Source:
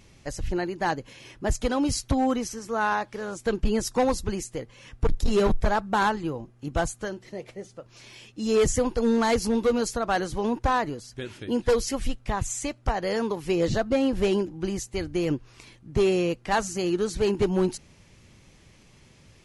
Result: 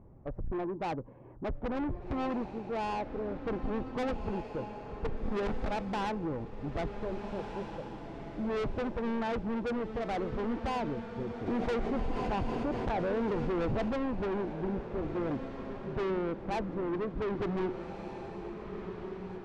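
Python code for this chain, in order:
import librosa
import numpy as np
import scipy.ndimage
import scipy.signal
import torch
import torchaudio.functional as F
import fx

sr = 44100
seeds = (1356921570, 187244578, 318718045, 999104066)

y = scipy.signal.sosfilt(scipy.signal.butter(4, 1000.0, 'lowpass', fs=sr, output='sos'), x)
y = 10.0 ** (-31.0 / 20.0) * np.tanh(y / 10.0 ** (-31.0 / 20.0))
y = fx.echo_diffused(y, sr, ms=1601, feedback_pct=41, wet_db=-7.5)
y = fx.env_flatten(y, sr, amount_pct=70, at=(11.46, 13.89), fade=0.02)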